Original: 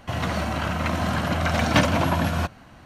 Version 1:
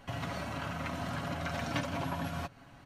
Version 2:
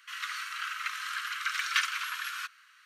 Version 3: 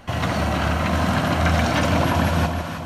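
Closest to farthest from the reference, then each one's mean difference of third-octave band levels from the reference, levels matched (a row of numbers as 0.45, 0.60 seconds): 1, 3, 2; 2.0, 3.5, 21.5 decibels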